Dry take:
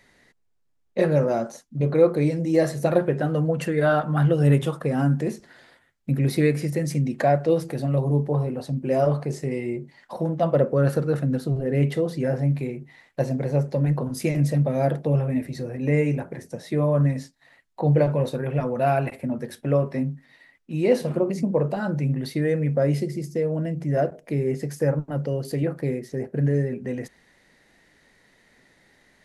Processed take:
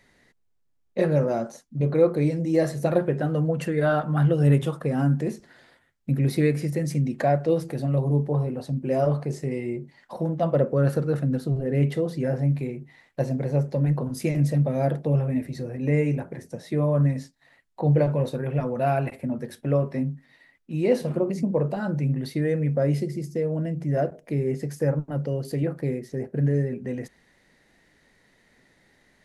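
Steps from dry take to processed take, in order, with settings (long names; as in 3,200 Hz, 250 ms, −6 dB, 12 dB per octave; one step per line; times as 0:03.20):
low-shelf EQ 350 Hz +3 dB
level −3 dB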